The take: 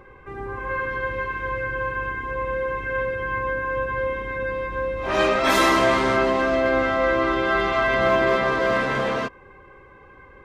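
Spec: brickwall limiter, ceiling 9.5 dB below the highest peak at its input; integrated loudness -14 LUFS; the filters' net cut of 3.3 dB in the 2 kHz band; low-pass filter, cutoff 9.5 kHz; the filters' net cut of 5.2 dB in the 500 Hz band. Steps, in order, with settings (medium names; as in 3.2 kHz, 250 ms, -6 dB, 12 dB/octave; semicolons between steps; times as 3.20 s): low-pass 9.5 kHz; peaking EQ 500 Hz -6.5 dB; peaking EQ 2 kHz -4 dB; trim +15.5 dB; peak limiter -5 dBFS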